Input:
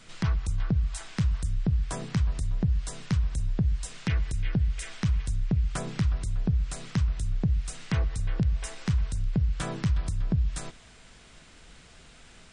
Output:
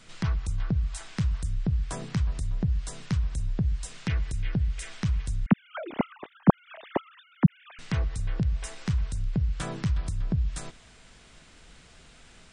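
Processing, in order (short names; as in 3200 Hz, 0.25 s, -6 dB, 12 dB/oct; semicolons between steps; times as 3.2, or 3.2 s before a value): 5.46–7.79 sine-wave speech; gain -1 dB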